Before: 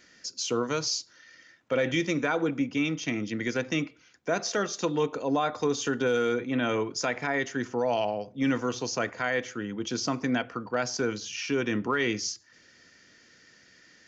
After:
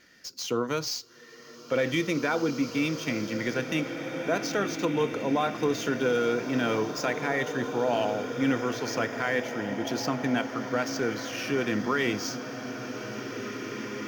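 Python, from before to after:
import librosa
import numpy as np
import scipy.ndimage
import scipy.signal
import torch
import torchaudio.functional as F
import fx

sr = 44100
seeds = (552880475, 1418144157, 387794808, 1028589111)

y = scipy.ndimage.median_filter(x, 5, mode='constant')
y = fx.rev_bloom(y, sr, seeds[0], attack_ms=2280, drr_db=6.0)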